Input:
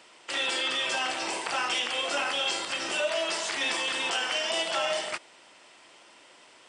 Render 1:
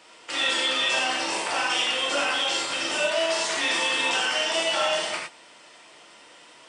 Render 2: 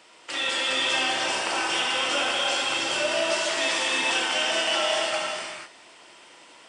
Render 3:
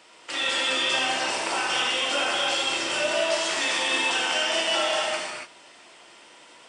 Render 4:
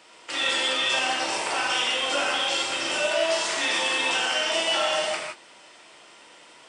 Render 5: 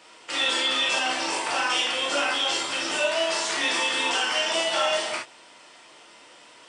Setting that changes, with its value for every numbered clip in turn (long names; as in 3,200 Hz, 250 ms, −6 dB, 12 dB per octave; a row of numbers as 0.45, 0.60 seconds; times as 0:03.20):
reverb whose tail is shaped and stops, gate: 130, 520, 310, 190, 90 milliseconds